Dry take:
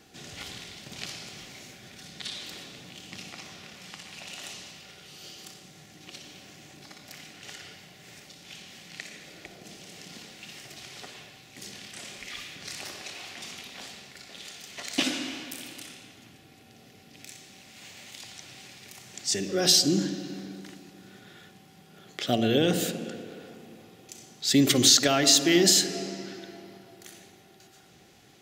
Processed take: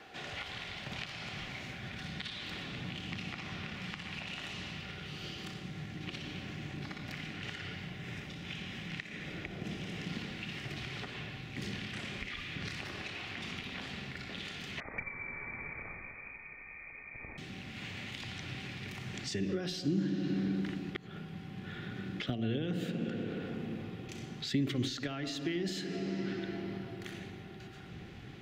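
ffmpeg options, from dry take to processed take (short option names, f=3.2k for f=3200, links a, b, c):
-filter_complex "[0:a]asettb=1/sr,asplit=3[a][b][c];[a]atrim=end=7.904[d];[b]atrim=start=7.9:end=10.06,asetpts=PTS-STARTPTS,afade=t=in:d=0.004:c=qsin,afade=t=out:st=2.156:d=0.004:c=qsin,bandreject=f=4.4k:w=12[e];[c]atrim=start=10.056[f];[d][e]acrossfade=d=0.004:c1=hsin:c2=qsin[g];[g][f]acrossfade=d=0.004:c1=qsin:c2=hsin,asettb=1/sr,asplit=3[h][i][j];[h]atrim=end=14.804[k];[i]atrim=start=14.8:end=17.38,asetpts=PTS-STARTPTS,afade=t=in:d=0.004:c=qsin,afade=t=out:st=2.576:d=0.004:c=qsin,lowpass=f=2.2k:t=q:w=0.5098,lowpass=f=2.2k:t=q:w=0.6013,lowpass=f=2.2k:t=q:w=0.9,lowpass=f=2.2k:t=q:w=2.563,afreqshift=-2600[l];[j]atrim=start=17.376[m];[k][l]acrossfade=d=0.004:c1=hsin:c2=qsin[n];[n][m]acrossfade=d=0.004:c1=qsin:c2=hsin,asplit=3[o][p][q];[o]atrim=end=20.952[r];[p]atrim=start=20.948:end=22.202,asetpts=PTS-STARTPTS,areverse[s];[q]atrim=start=22.198[t];[r][s]acrossfade=d=0.004:c1=hsin:c2=hsin[u];[u][t]acrossfade=d=0.004:c1=hsin:c2=hsin,acrossover=split=460 3300:gain=0.251 1 0.0891[v][w][x];[v][w][x]amix=inputs=3:normalize=0,acompressor=threshold=-46dB:ratio=8,asubboost=boost=11.5:cutoff=190,volume=8dB"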